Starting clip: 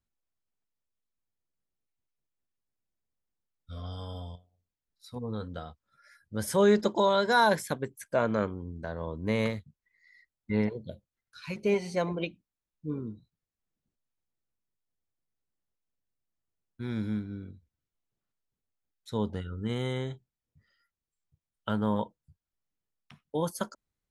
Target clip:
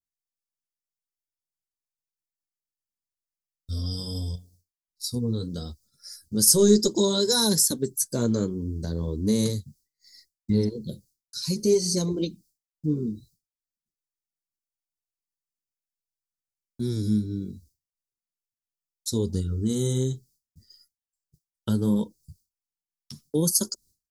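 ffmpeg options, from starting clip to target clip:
-filter_complex "[0:a]asettb=1/sr,asplit=3[s0][s1][s2];[s0]atrim=end=6.464[s3];[s1]atrim=start=6.46:end=6.92,asetpts=PTS-STARTPTS,afade=t=in:d=0.004:c=qsin,afade=t=out:st=0.456:d=0.004:c=qsin,aeval=exprs='0.251*(cos(1*acos(clip(val(0)/0.251,-1,1)))-cos(1*PI/2))+0.00447*(cos(6*acos(clip(val(0)/0.251,-1,1)))-cos(6*PI/2))':c=same[s4];[s2]atrim=start=6.916[s5];[s3][s4]acrossfade=d=0.004:c1=hsin:c2=qsin[s6];[s6][s5]acrossfade=d=0.004:c1=qsin:c2=hsin,firequalizer=gain_entry='entry(390,0);entry(640,-18);entry(930,-17);entry(2500,-20);entry(4700,14)':delay=0.05:min_phase=1,asplit=2[s7][s8];[s8]acompressor=threshold=0.01:ratio=6,volume=1.26[s9];[s7][s9]amix=inputs=2:normalize=0,flanger=delay=0.2:depth=8.9:regen=-33:speed=0.67:shape=triangular,agate=range=0.0224:threshold=0.001:ratio=3:detection=peak,volume=2.66"

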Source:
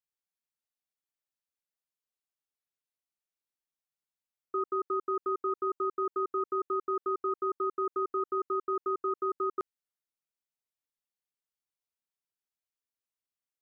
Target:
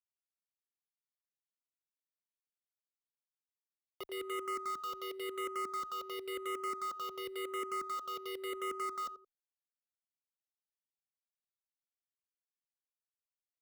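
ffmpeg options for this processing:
-filter_complex "[0:a]areverse,acrossover=split=340[s0][s1];[s0]alimiter=level_in=13.3:limit=0.0631:level=0:latency=1,volume=0.075[s2];[s2][s1]amix=inputs=2:normalize=0,aeval=exprs='val(0)*gte(abs(val(0)),0.00794)':c=same,asplit=2[s3][s4];[s4]adelay=86,lowpass=f=1400:p=1,volume=0.188,asplit=2[s5][s6];[s6]adelay=86,lowpass=f=1400:p=1,volume=0.22[s7];[s3][s5][s7]amix=inputs=3:normalize=0,asoftclip=type=tanh:threshold=0.0133,asplit=2[s8][s9];[s9]afreqshift=-0.94[s10];[s8][s10]amix=inputs=2:normalize=1,volume=1.68"

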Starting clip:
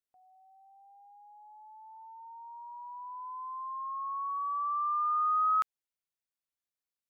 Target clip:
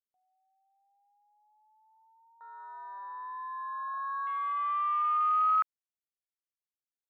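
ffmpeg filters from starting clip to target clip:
-af "afwtdn=0.0141,volume=1.19"

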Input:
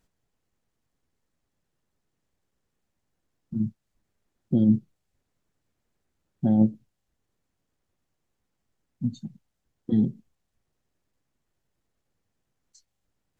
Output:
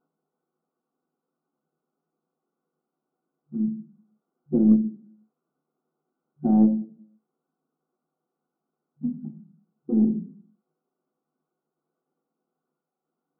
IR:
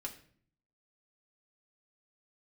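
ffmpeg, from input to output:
-filter_complex "[1:a]atrim=start_sample=2205,asetrate=57330,aresample=44100[s0];[0:a][s0]afir=irnorm=-1:irlink=0,afftfilt=real='re*between(b*sr/4096,150,1500)':imag='im*between(b*sr/4096,150,1500)':win_size=4096:overlap=0.75,aeval=exprs='0.211*(cos(1*acos(clip(val(0)/0.211,-1,1)))-cos(1*PI/2))+0.0133*(cos(2*acos(clip(val(0)/0.211,-1,1)))-cos(2*PI/2))+0.00266*(cos(5*acos(clip(val(0)/0.211,-1,1)))-cos(5*PI/2))':c=same,volume=1.88"

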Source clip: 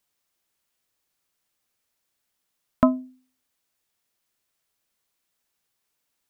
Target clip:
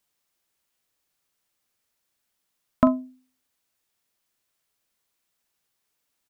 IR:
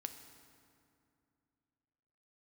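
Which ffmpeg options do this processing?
-filter_complex "[0:a]asplit=2[s0][s1];[s1]adelay=42,volume=0.211[s2];[s0][s2]amix=inputs=2:normalize=0"

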